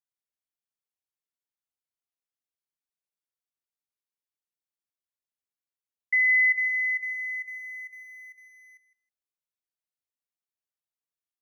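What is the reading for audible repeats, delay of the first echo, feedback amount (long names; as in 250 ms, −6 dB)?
2, 159 ms, 16%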